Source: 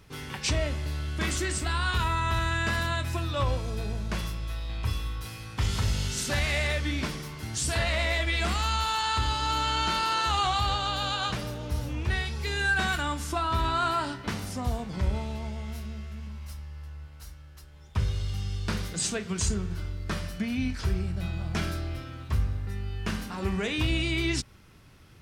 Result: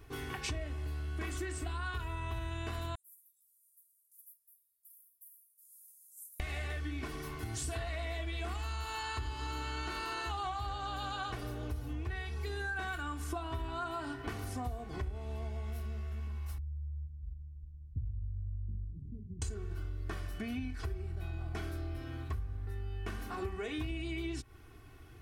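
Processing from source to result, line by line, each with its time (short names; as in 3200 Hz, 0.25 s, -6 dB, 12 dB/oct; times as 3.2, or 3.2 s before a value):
2.95–6.4 inverse Chebyshev high-pass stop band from 2400 Hz, stop band 80 dB
16.58–19.42 inverse Chebyshev low-pass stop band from 860 Hz, stop band 70 dB
whole clip: bell 5000 Hz -8.5 dB 1.8 oct; comb 2.7 ms, depth 77%; compressor, threshold -34 dBFS; gain -1.5 dB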